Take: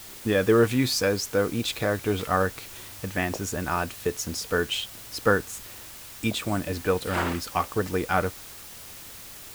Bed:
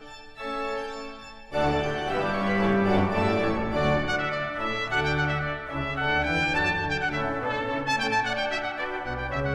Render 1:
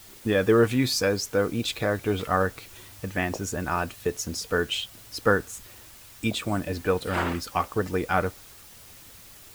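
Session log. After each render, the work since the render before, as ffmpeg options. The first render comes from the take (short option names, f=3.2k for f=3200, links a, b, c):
-af "afftdn=nr=6:nf=-43"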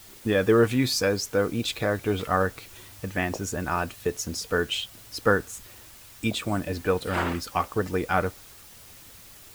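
-af anull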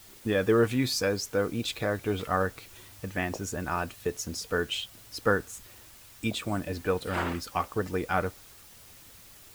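-af "volume=-3.5dB"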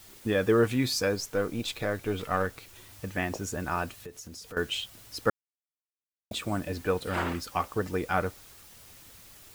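-filter_complex "[0:a]asettb=1/sr,asplit=3[a][b][c];[a]atrim=end=1.154[d];[b]atrim=start=1.15:end=2.89,asetpts=PTS-STARTPTS,afade=t=in:d=0.004:c=qsin,afade=t=out:st=1.736:d=0.004:c=qsin,aeval=exprs='if(lt(val(0),0),0.708*val(0),val(0))':c=same[e];[c]atrim=start=2.886[f];[d][e]acrossfade=d=0.004:c1=hsin:c2=qsin[g];[g][f]acrossfade=d=0.004:c1=qsin:c2=hsin,asettb=1/sr,asplit=3[h][i][j];[h]atrim=end=4.034[k];[i]atrim=start=4.03:end=4.57,asetpts=PTS-STARTPTS,afade=t=in:d=0.004:c=qsin,afade=t=out:st=0.536:d=0.004:c=qsin,acompressor=threshold=-43dB:ratio=3:attack=3.2:release=140:knee=1:detection=peak[l];[j]atrim=start=4.566[m];[k][l]acrossfade=d=0.004:c1=hsin:c2=qsin[n];[n][m]acrossfade=d=0.004:c1=qsin:c2=hsin,asplit=3[o][p][q];[o]atrim=end=5.3,asetpts=PTS-STARTPTS,afade=t=out:st=5.296:d=0.004:c=hsin[r];[p]atrim=start=5.3:end=6.31,asetpts=PTS-STARTPTS,volume=0[s];[q]atrim=start=6.31,asetpts=PTS-STARTPTS,afade=t=in:d=0.004:c=hsin[t];[r][s][t]concat=n=3:v=0:a=1"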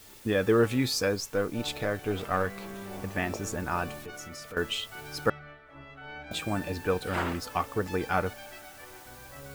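-filter_complex "[1:a]volume=-18.5dB[a];[0:a][a]amix=inputs=2:normalize=0"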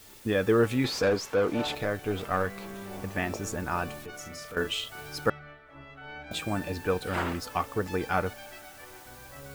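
-filter_complex "[0:a]asettb=1/sr,asplit=3[a][b][c];[a]atrim=end=0.844[d];[b]atrim=start=0.84:end=1.75,asetpts=PTS-STARTPTS,afade=t=in:d=0.004:c=qsin,afade=t=out:st=0.906:d=0.004:c=qsin,asplit=2[e][f];[f]highpass=f=720:p=1,volume=21dB,asoftclip=type=tanh:threshold=-16dB[g];[e][g]amix=inputs=2:normalize=0,lowpass=f=1.3k:p=1,volume=-6dB[h];[c]atrim=start=1.746[i];[d][h]acrossfade=d=0.004:c1=hsin:c2=qsin[j];[j][i]acrossfade=d=0.004:c1=qsin:c2=hsin,asettb=1/sr,asplit=3[k][l][m];[k]atrim=end=4.154[n];[l]atrim=start=4.15:end=5.09,asetpts=PTS-STARTPTS,afade=t=in:d=0.004:c=qsin,afade=t=out:st=0.936:d=0.004:c=qsin,asplit=2[o][p];[p]adelay=39,volume=-7dB[q];[o][q]amix=inputs=2:normalize=0,atrim=end_sample=41454[r];[m]atrim=start=5.086[s];[n][r]acrossfade=d=0.004:c1=hsin:c2=qsin[t];[t][s]acrossfade=d=0.004:c1=qsin:c2=hsin"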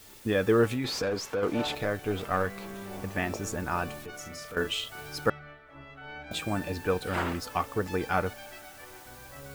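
-filter_complex "[0:a]asettb=1/sr,asplit=3[a][b][c];[a]atrim=end=0.734[d];[b]atrim=start=0.73:end=1.43,asetpts=PTS-STARTPTS,afade=t=in:d=0.004:c=qsin,afade=t=out:st=0.696:d=0.004:c=qsin,acompressor=threshold=-26dB:ratio=6:attack=3.2:release=140:knee=1:detection=peak[e];[c]atrim=start=1.426[f];[d][e]acrossfade=d=0.004:c1=hsin:c2=qsin[g];[g][f]acrossfade=d=0.004:c1=qsin:c2=hsin"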